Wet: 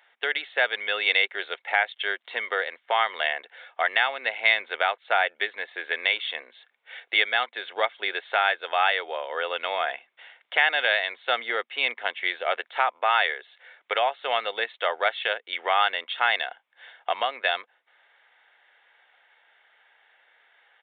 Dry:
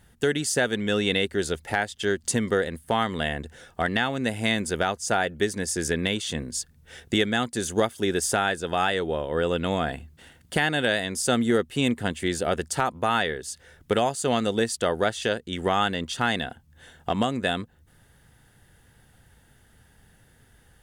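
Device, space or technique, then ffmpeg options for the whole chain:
musical greeting card: -af "aresample=8000,aresample=44100,highpass=f=630:w=0.5412,highpass=f=630:w=1.3066,equalizer=f=2.2k:t=o:w=0.23:g=9.5,volume=2.5dB"

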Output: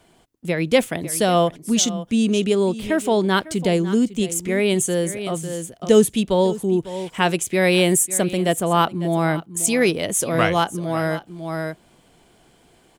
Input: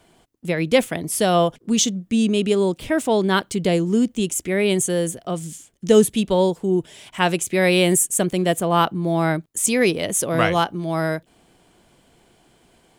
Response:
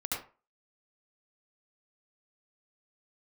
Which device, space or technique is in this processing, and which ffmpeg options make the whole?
ducked delay: -filter_complex "[0:a]asplit=3[a][b][c];[b]adelay=550,volume=-4dB[d];[c]apad=whole_len=596912[e];[d][e]sidechaincompress=threshold=-29dB:ratio=8:attack=12:release=427[f];[a][f]amix=inputs=2:normalize=0"

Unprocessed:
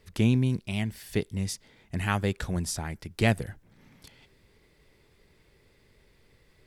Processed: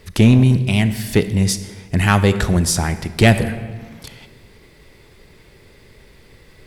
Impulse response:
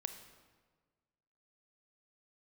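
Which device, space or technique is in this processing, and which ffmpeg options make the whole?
saturated reverb return: -filter_complex "[0:a]asplit=2[a][b];[1:a]atrim=start_sample=2205[c];[b][c]afir=irnorm=-1:irlink=0,asoftclip=type=tanh:threshold=-24dB,volume=6.5dB[d];[a][d]amix=inputs=2:normalize=0,volume=6dB"

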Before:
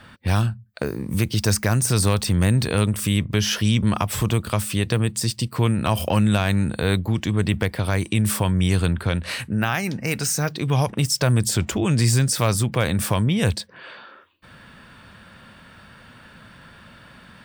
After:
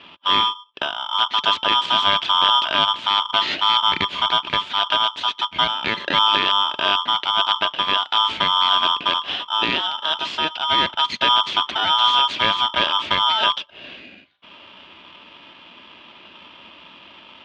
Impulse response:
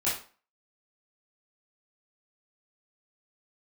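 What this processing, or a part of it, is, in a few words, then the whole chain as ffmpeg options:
ring modulator pedal into a guitar cabinet: -filter_complex "[0:a]asettb=1/sr,asplit=3[a][b][c];[a]atrim=end=5.644[d];[b]atrim=start=5.64:end=6.14,asetpts=PTS-STARTPTS,afade=t=in:d=0.004:c=qsin,afade=t=out:st=0.496:d=0.004:c=qsin,highpass=f=240:p=1[e];[c]atrim=start=6.136[f];[d][e]acrossfade=d=0.004:c1=hsin:c2=qsin[g];[g][f]acrossfade=d=0.004:c1=qsin:c2=hsin,aeval=exprs='val(0)*sgn(sin(2*PI*1100*n/s))':c=same,highpass=110,equalizer=f=130:t=q:w=4:g=-9,equalizer=f=480:t=q:w=4:g=-9,equalizer=f=800:t=q:w=4:g=-6,equalizer=f=1.3k:t=q:w=4:g=-6,equalizer=f=1.9k:t=q:w=4:g=-4,equalizer=f=3.2k:t=q:w=4:g=9,lowpass=f=3.4k:w=0.5412,lowpass=f=3.4k:w=1.3066,volume=3.5dB"

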